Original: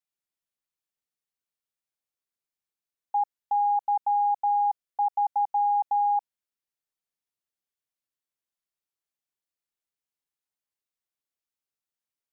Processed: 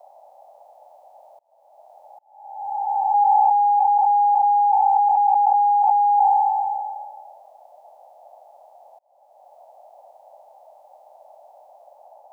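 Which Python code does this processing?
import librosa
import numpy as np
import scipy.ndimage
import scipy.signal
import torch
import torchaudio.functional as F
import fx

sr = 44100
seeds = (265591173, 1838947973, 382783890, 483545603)

p1 = fx.spec_blur(x, sr, span_ms=1140.0)
p2 = fx.over_compress(p1, sr, threshold_db=-33.0, ratio=-0.5)
p3 = p1 + (p2 * librosa.db_to_amplitude(2.0))
p4 = fx.dmg_noise_band(p3, sr, seeds[0], low_hz=570.0, high_hz=860.0, level_db=-57.0)
p5 = fx.auto_swell(p4, sr, attack_ms=539.0)
y = p5 * librosa.db_to_amplitude(8.5)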